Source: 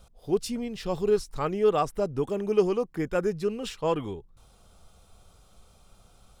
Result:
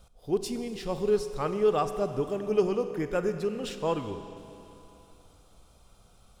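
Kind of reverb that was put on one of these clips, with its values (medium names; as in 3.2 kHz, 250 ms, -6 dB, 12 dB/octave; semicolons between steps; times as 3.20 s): Schroeder reverb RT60 3.1 s, combs from 31 ms, DRR 9 dB; trim -2 dB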